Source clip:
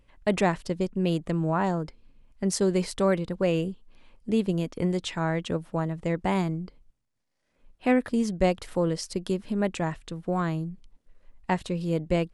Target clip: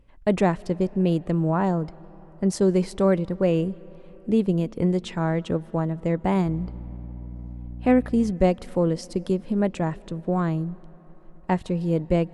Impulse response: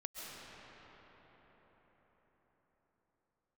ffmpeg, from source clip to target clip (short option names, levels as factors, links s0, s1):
-filter_complex "[0:a]asettb=1/sr,asplit=3[s0][s1][s2];[s0]atrim=end=6.464[s3];[s1]atrim=start=6.46:end=8.31,asetpts=PTS-STARTPTS,afade=t=in:d=0.004:c=qsin,afade=t=out:st=1.846:d=0.004:c=qsin,aeval=exprs='val(0)+0.0112*(sin(2*PI*60*n/s)+sin(2*PI*2*60*n/s)/2+sin(2*PI*3*60*n/s)/3+sin(2*PI*4*60*n/s)/4+sin(2*PI*5*60*n/s)/5)':c=same[s4];[s2]atrim=start=8.306[s5];[s3][s4]acrossfade=d=0.004:c1=hsin:c2=qsin[s6];[s6][s5]acrossfade=d=0.004:c1=qsin:c2=hsin,tiltshelf=f=1200:g=4.5,asplit=2[s7][s8];[1:a]atrim=start_sample=2205,adelay=16[s9];[s8][s9]afir=irnorm=-1:irlink=0,volume=0.0891[s10];[s7][s10]amix=inputs=2:normalize=0"